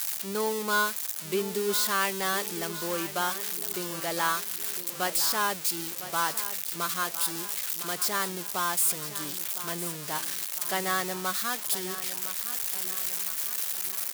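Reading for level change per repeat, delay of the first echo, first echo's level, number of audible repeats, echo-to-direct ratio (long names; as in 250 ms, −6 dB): −6.0 dB, 1,008 ms, −13.0 dB, 3, −12.0 dB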